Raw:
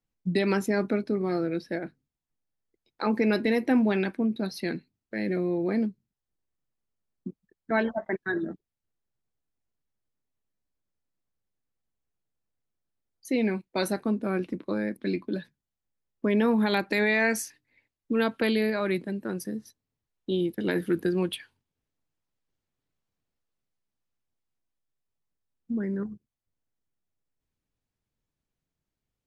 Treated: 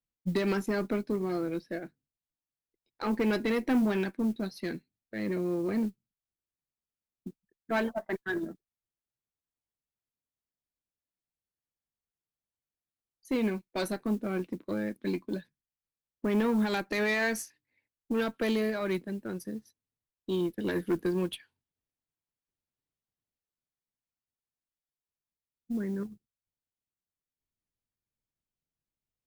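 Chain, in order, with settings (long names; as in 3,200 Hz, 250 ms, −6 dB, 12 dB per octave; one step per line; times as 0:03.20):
tube saturation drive 21 dB, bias 0.2
noise that follows the level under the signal 30 dB
expander for the loud parts 1.5 to 1, over −44 dBFS
level +1 dB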